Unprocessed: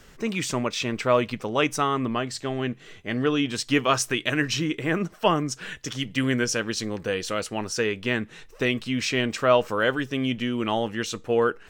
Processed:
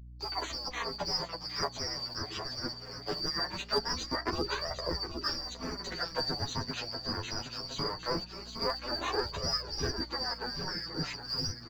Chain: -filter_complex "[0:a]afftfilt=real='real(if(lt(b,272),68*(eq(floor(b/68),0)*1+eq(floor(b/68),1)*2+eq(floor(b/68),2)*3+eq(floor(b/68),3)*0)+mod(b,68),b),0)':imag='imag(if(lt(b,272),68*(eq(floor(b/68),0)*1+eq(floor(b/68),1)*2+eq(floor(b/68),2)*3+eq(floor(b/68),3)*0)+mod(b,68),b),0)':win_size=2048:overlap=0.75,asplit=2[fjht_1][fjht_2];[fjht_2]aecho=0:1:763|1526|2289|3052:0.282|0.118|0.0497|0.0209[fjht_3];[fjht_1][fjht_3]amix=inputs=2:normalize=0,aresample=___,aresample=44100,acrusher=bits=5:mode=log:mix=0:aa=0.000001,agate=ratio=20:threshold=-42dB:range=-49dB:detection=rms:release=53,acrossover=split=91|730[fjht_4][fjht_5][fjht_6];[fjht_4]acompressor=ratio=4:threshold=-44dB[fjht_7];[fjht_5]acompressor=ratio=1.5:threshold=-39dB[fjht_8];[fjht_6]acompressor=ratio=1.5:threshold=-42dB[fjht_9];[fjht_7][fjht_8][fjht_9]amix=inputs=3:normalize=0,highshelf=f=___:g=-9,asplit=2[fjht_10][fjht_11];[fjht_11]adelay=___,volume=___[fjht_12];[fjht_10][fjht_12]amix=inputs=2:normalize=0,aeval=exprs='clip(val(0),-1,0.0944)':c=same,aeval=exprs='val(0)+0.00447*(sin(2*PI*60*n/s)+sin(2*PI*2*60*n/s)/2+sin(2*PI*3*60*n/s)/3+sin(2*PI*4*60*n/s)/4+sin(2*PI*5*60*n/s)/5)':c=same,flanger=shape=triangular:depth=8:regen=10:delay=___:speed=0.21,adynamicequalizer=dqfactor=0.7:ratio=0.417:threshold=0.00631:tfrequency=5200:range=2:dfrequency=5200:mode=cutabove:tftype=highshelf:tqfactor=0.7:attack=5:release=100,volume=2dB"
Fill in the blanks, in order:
16000, 3900, 12, -2dB, 1.4